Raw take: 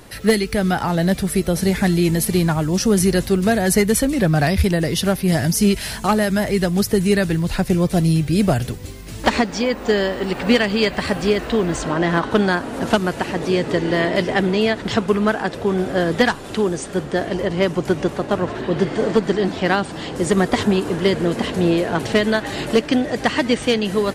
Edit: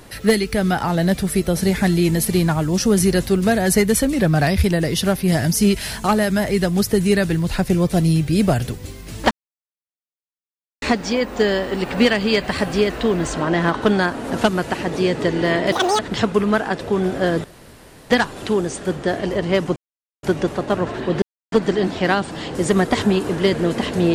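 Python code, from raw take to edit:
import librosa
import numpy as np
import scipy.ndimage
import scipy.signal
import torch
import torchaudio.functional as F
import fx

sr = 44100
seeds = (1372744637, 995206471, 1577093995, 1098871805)

y = fx.edit(x, sr, fx.insert_silence(at_s=9.31, length_s=1.51),
    fx.speed_span(start_s=14.21, length_s=0.52, speed=1.92),
    fx.insert_room_tone(at_s=16.18, length_s=0.66),
    fx.insert_silence(at_s=17.84, length_s=0.47),
    fx.silence(start_s=18.83, length_s=0.3), tone=tone)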